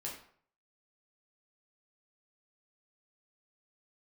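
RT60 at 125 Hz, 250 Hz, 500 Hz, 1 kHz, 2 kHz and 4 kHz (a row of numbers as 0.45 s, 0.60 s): 0.60 s, 0.50 s, 0.55 s, 0.55 s, 0.50 s, 0.40 s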